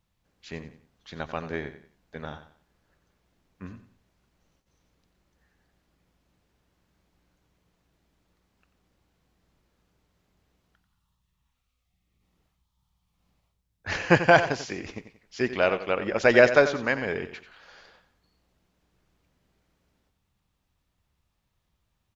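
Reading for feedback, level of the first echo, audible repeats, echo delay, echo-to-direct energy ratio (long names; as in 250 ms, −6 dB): 33%, −12.0 dB, 3, 90 ms, −11.5 dB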